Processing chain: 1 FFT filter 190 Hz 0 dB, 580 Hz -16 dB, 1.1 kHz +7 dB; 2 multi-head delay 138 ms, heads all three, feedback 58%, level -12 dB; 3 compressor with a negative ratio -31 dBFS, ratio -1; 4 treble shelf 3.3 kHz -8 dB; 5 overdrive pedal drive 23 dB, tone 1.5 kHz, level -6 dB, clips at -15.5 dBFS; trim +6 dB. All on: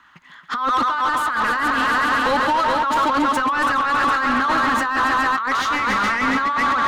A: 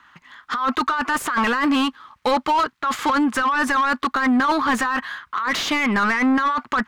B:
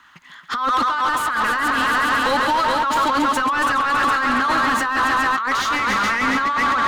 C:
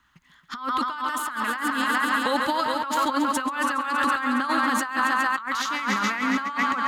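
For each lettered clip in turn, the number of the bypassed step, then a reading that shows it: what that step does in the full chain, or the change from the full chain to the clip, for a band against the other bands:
2, momentary loudness spread change +4 LU; 4, 8 kHz band +3.5 dB; 5, crest factor change +7.0 dB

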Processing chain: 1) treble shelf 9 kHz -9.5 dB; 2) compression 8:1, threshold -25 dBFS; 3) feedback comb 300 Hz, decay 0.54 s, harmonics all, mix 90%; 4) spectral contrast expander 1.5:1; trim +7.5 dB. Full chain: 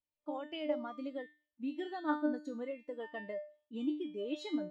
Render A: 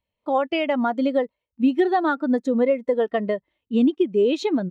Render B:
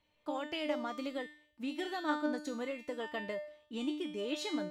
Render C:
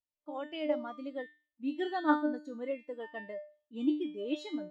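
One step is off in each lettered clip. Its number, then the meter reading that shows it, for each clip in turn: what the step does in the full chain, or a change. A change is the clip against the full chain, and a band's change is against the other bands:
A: 3, 4 kHz band -3.0 dB; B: 4, 4 kHz band +5.5 dB; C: 2, mean gain reduction 3.5 dB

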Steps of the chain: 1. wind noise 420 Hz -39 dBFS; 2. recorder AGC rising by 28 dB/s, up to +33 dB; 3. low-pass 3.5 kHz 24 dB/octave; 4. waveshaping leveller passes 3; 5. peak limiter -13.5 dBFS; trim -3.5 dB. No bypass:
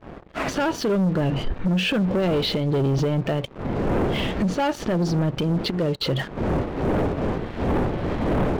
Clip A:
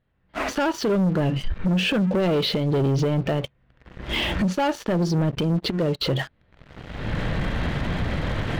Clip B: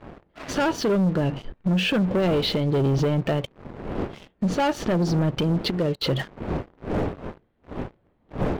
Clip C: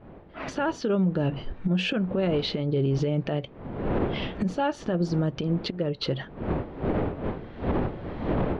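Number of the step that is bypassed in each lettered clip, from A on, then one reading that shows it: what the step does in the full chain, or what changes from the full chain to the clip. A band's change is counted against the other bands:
1, 2 kHz band +2.0 dB; 2, crest factor change +2.0 dB; 4, crest factor change +4.5 dB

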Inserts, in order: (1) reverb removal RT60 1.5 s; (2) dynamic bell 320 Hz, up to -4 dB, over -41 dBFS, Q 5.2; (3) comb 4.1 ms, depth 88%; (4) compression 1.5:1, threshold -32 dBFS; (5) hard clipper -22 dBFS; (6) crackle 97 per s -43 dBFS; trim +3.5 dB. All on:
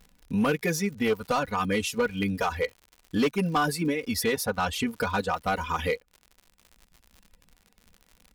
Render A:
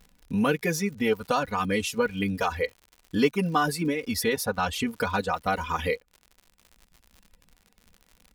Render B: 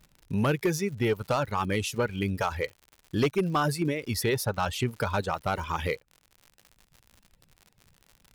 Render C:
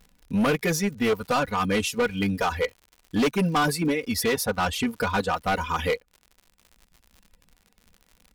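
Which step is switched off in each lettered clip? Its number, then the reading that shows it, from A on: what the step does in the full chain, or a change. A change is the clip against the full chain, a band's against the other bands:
5, distortion -17 dB; 3, 125 Hz band +5.5 dB; 4, mean gain reduction 3.5 dB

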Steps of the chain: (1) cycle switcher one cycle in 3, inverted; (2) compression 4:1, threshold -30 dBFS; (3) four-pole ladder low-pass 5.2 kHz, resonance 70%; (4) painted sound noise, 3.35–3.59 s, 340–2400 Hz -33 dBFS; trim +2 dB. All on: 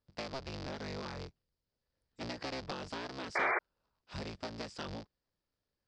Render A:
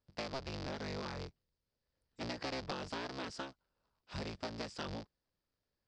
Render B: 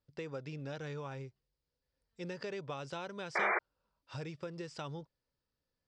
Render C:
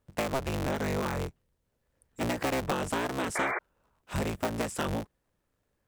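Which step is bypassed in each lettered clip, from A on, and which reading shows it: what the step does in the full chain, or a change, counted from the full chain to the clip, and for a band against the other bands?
4, 2 kHz band -8.0 dB; 1, 4 kHz band -5.5 dB; 3, 8 kHz band +7.0 dB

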